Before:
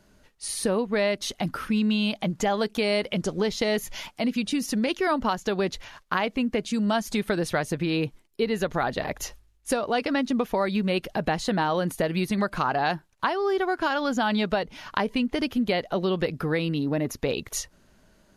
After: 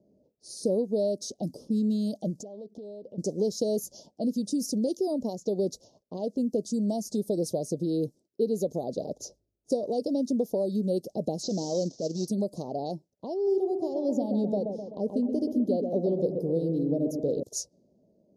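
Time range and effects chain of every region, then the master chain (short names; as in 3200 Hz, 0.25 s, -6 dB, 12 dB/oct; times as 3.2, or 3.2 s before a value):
2.4–3.18 compressor 10:1, threshold -35 dBFS + Doppler distortion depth 0.27 ms
11.43–12.28 CVSD 32 kbps + high shelf 2200 Hz +11.5 dB + transient shaper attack -9 dB, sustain -4 dB
13.34–17.43 high shelf 2500 Hz -10.5 dB + analogue delay 0.128 s, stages 2048, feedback 54%, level -5.5 dB
whole clip: elliptic band-stop 580–5300 Hz, stop band 60 dB; low-pass opened by the level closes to 1500 Hz, open at -25 dBFS; HPF 180 Hz 12 dB/oct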